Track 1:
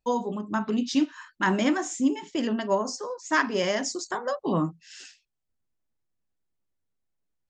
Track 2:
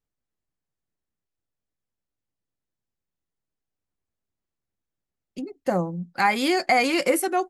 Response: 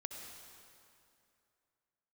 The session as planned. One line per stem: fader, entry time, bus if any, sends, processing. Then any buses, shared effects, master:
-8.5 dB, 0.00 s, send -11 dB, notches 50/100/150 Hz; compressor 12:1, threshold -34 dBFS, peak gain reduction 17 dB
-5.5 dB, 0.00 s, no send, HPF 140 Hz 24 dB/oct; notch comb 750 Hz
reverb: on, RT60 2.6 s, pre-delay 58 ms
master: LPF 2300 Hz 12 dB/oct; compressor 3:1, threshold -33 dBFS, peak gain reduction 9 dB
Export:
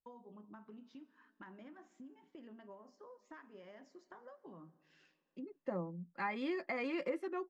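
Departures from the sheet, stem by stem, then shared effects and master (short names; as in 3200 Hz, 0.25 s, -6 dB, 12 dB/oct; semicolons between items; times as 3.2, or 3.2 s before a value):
stem 1 -8.5 dB -> -18.5 dB; stem 2 -5.5 dB -> -13.5 dB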